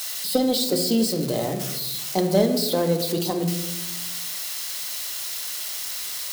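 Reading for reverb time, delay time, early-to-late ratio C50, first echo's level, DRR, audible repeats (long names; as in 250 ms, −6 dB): 1.1 s, no echo audible, 8.0 dB, no echo audible, 5.5 dB, no echo audible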